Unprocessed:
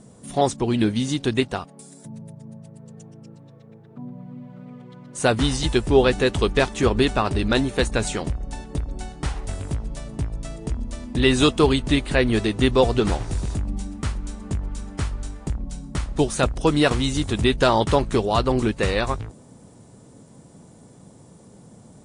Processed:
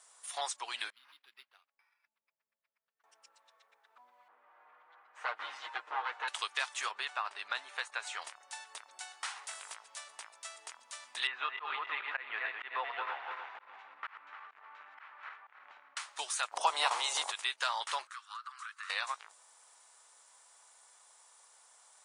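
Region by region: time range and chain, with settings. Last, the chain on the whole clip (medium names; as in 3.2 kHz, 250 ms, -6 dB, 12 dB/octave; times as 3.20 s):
0.90–3.04 s: amplifier tone stack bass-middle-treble 10-0-1 + decimation joined by straight lines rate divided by 6×
4.28–6.28 s: comb filter that takes the minimum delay 8.5 ms + low-pass 1.5 kHz + comb 6.5 ms, depth 40%
6.91–8.22 s: low-pass 1.8 kHz 6 dB/octave + bass shelf 130 Hz -9 dB
11.27–15.97 s: backward echo that repeats 149 ms, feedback 59%, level -6.5 dB + low-pass 2.3 kHz 24 dB/octave + slow attack 148 ms
16.51–17.30 s: spectral peaks clipped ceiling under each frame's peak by 17 dB + high-order bell 510 Hz +16 dB 2.3 oct
18.07–18.90 s: elliptic high-pass 1.2 kHz, stop band 50 dB + resonant high shelf 1.8 kHz -10 dB, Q 1.5 + compression 12:1, threshold -37 dBFS
whole clip: high-pass 1 kHz 24 dB/octave; compression 2:1, threshold -34 dBFS; trim -2 dB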